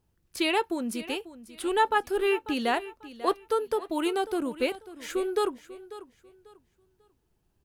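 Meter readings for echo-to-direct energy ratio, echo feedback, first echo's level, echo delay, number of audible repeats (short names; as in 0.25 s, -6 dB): -15.5 dB, 26%, -16.0 dB, 0.543 s, 2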